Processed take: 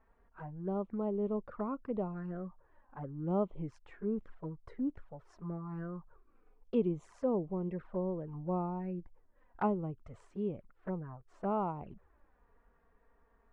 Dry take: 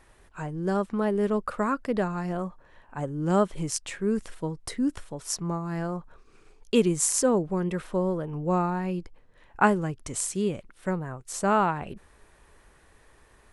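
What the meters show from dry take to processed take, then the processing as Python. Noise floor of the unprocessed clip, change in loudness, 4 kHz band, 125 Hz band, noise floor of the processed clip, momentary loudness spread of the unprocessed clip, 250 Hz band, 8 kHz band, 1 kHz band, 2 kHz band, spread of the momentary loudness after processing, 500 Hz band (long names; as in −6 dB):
−59 dBFS, −10.0 dB, below −25 dB, −9.0 dB, −70 dBFS, 12 LU, −9.0 dB, below −40 dB, −12.0 dB, −21.0 dB, 13 LU, −9.0 dB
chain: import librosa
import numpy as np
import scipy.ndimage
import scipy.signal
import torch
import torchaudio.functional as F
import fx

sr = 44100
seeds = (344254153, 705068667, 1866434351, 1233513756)

y = scipy.signal.sosfilt(scipy.signal.cheby1(2, 1.0, 1200.0, 'lowpass', fs=sr, output='sos'), x)
y = fx.env_flanger(y, sr, rest_ms=4.7, full_db=-24.5)
y = y * 10.0 ** (-7.5 / 20.0)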